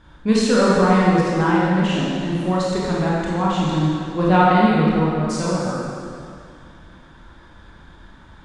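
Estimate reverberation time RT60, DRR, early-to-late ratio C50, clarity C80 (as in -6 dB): 2.3 s, -6.5 dB, -3.0 dB, -1.0 dB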